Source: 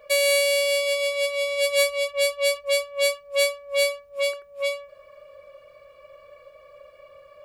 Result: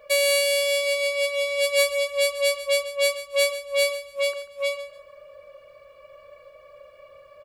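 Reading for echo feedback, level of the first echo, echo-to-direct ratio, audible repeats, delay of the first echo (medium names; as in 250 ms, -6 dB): 23%, -14.0 dB, -13.5 dB, 2, 141 ms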